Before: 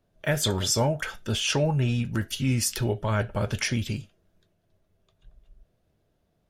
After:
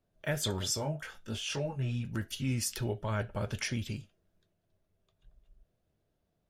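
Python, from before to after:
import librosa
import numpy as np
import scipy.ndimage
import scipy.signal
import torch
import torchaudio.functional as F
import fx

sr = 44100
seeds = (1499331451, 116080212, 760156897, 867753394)

y = fx.detune_double(x, sr, cents=fx.line((0.76, 25.0), (2.02, 12.0)), at=(0.76, 2.02), fade=0.02)
y = F.gain(torch.from_numpy(y), -7.5).numpy()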